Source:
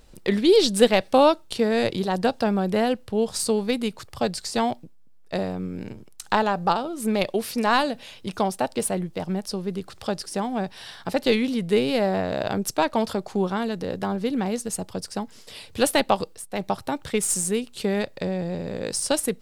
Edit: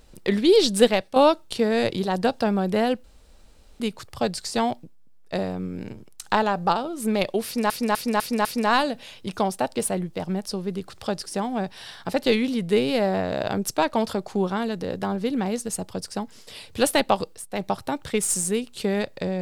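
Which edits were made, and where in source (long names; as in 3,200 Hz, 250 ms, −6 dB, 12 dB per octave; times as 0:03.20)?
0:00.85–0:01.16: fade out, to −11 dB
0:03.04–0:03.80: fill with room tone
0:07.45–0:07.70: repeat, 5 plays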